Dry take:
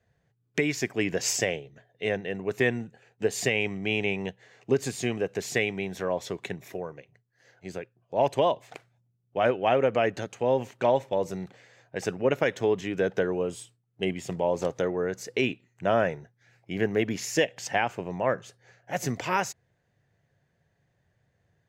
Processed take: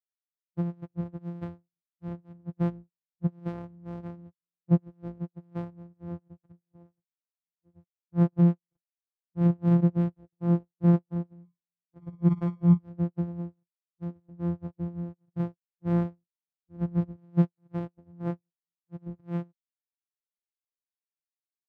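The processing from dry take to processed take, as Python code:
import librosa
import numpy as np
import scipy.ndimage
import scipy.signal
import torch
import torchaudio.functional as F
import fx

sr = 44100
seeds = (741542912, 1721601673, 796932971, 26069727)

y = np.r_[np.sort(x[:len(x) // 256 * 256].reshape(-1, 256), axis=1).ravel(), x[len(x) // 256 * 256:]]
y = fx.room_flutter(y, sr, wall_m=9.8, rt60_s=0.44, at=(11.44, 12.77), fade=0.02)
y = fx.spectral_expand(y, sr, expansion=2.5)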